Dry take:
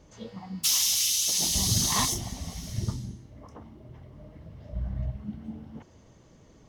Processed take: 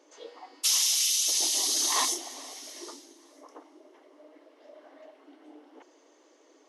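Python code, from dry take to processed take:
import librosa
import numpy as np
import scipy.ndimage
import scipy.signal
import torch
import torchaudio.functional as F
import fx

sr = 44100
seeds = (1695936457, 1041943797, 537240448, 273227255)

p1 = fx.brickwall_bandpass(x, sr, low_hz=270.0, high_hz=12000.0)
y = p1 + fx.echo_feedback(p1, sr, ms=422, feedback_pct=47, wet_db=-23, dry=0)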